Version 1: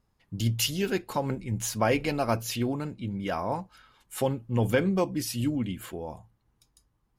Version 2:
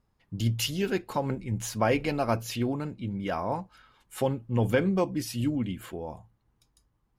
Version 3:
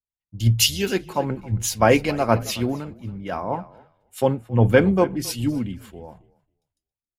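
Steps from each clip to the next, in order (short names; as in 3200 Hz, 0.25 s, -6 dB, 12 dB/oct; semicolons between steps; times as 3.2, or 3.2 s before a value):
high shelf 4400 Hz -5.5 dB
frequency-shifting echo 0.273 s, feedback 44%, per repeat -33 Hz, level -15 dB; three-band expander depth 100%; gain +5 dB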